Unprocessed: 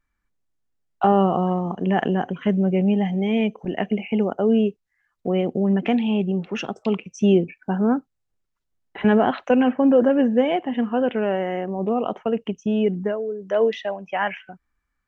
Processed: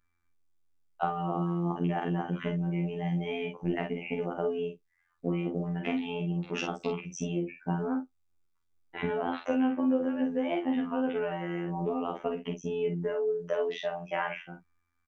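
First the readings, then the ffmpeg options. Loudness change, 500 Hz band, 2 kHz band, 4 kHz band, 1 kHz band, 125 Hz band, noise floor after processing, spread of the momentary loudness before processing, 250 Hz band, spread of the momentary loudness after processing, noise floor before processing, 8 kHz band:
-10.0 dB, -10.5 dB, -7.5 dB, -8.0 dB, -10.0 dB, -6.5 dB, -74 dBFS, 8 LU, -11.0 dB, 6 LU, -77 dBFS, no reading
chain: -af "acompressor=threshold=0.0708:ratio=6,afftfilt=real='hypot(re,im)*cos(PI*b)':imag='0':win_size=2048:overlap=0.75,aecho=1:1:34|49:0.447|0.422"

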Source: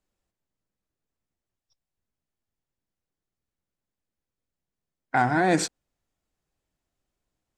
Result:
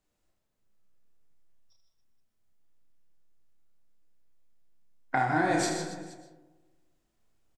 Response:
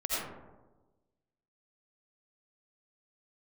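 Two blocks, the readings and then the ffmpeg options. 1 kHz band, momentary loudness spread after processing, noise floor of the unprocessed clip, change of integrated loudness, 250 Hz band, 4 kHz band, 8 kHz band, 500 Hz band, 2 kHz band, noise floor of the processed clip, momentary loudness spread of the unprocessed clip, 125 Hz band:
-3.5 dB, 17 LU, under -85 dBFS, -4.5 dB, -4.0 dB, -3.0 dB, -3.0 dB, -4.0 dB, -3.5 dB, -79 dBFS, 7 LU, -4.5 dB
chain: -filter_complex "[0:a]acompressor=threshold=0.0501:ratio=12,flanger=delay=6.4:depth=2.7:regen=87:speed=0.76:shape=sinusoidal,aecho=1:1:30|78|154.8|277.7|474.3:0.631|0.398|0.251|0.158|0.1,asplit=2[s0][s1];[1:a]atrim=start_sample=2205,adelay=39[s2];[s1][s2]afir=irnorm=-1:irlink=0,volume=0.266[s3];[s0][s3]amix=inputs=2:normalize=0,volume=1.88"

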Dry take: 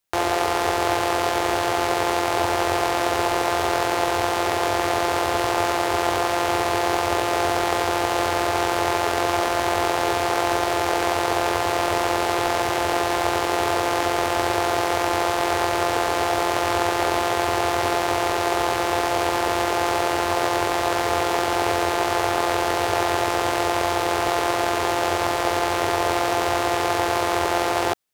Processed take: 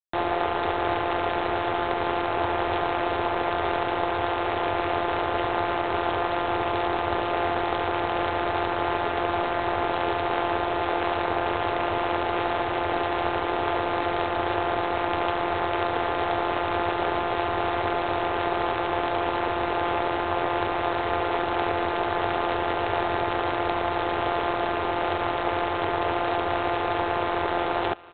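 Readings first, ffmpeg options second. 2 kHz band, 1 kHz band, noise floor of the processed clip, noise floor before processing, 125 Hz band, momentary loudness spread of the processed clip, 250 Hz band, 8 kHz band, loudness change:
-4.5 dB, -3.5 dB, -28 dBFS, -24 dBFS, -2.5 dB, 1 LU, -3.0 dB, under -40 dB, -4.0 dB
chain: -af "aecho=1:1:370|740|1110:0.0794|0.0302|0.0115,volume=0.794" -ar 8000 -c:a adpcm_g726 -b:a 24k

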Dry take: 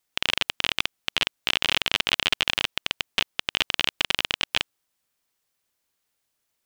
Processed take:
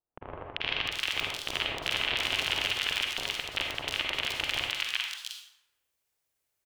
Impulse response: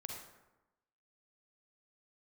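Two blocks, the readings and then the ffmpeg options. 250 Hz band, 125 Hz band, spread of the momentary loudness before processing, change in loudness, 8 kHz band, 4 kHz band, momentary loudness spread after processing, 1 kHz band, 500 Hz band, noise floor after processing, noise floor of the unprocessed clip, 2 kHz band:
-5.0 dB, -2.5 dB, 5 LU, -5.0 dB, -4.0 dB, -5.5 dB, 10 LU, -4.0 dB, -2.5 dB, -81 dBFS, -78 dBFS, -4.0 dB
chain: -filter_complex "[0:a]equalizer=f=200:w=4.8:g=-14.5,acrossover=split=1100|4000[s0][s1][s2];[s1]adelay=390[s3];[s2]adelay=700[s4];[s0][s3][s4]amix=inputs=3:normalize=0[s5];[1:a]atrim=start_sample=2205[s6];[s5][s6]afir=irnorm=-1:irlink=0"

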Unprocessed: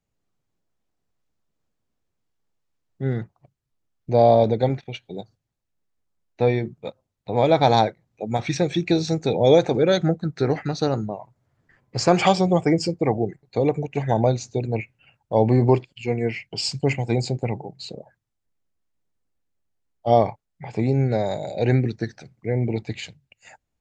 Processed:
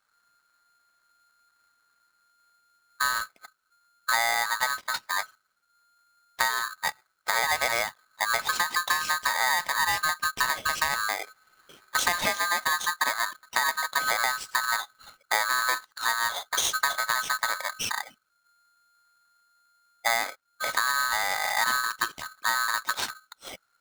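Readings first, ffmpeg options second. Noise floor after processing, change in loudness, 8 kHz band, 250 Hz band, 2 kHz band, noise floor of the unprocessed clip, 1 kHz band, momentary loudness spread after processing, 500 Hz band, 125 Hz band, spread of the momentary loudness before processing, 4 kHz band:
-73 dBFS, -4.5 dB, +9.5 dB, -27.0 dB, +10.5 dB, -79 dBFS, -1.0 dB, 8 LU, -19.0 dB, -30.5 dB, 16 LU, +3.5 dB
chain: -af "acompressor=threshold=0.0355:ratio=10,aeval=exprs='val(0)*sgn(sin(2*PI*1400*n/s))':c=same,volume=2.11"

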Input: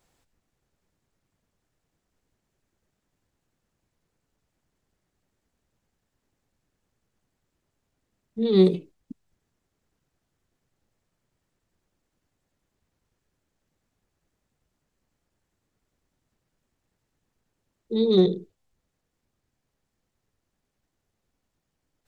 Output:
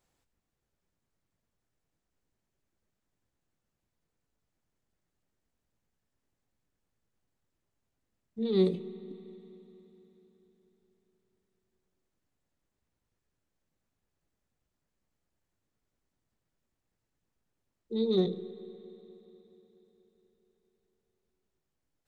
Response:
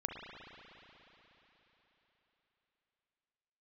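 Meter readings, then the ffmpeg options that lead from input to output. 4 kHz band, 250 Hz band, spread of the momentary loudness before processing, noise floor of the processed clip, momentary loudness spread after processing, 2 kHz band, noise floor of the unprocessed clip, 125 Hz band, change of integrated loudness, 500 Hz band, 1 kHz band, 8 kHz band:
-8.0 dB, -8.0 dB, 17 LU, -84 dBFS, 21 LU, -7.5 dB, -80 dBFS, -8.5 dB, -9.0 dB, -8.0 dB, -7.5 dB, no reading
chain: -filter_complex "[0:a]asplit=2[s0][s1];[1:a]atrim=start_sample=2205,adelay=18[s2];[s1][s2]afir=irnorm=-1:irlink=0,volume=0.224[s3];[s0][s3]amix=inputs=2:normalize=0,volume=0.398"

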